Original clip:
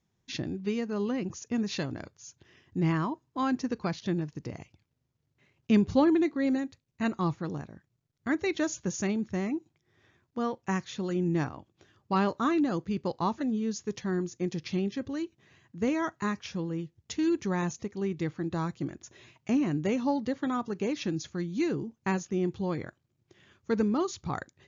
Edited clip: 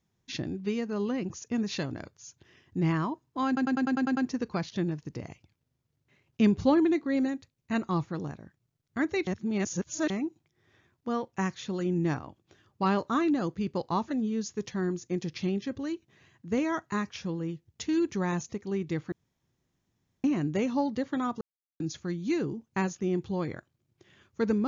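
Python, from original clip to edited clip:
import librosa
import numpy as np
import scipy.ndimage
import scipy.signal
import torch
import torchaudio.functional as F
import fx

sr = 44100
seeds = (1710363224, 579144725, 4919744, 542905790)

y = fx.edit(x, sr, fx.stutter(start_s=3.47, slice_s=0.1, count=8),
    fx.reverse_span(start_s=8.57, length_s=0.83),
    fx.room_tone_fill(start_s=18.42, length_s=1.12),
    fx.silence(start_s=20.71, length_s=0.39), tone=tone)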